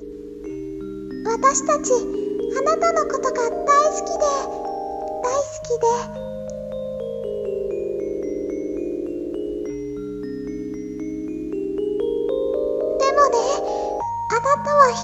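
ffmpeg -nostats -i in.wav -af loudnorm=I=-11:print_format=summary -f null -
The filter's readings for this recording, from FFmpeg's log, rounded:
Input Integrated:    -21.7 LUFS
Input True Peak:      -1.2 dBTP
Input LRA:             8.5 LU
Input Threshold:     -31.8 LUFS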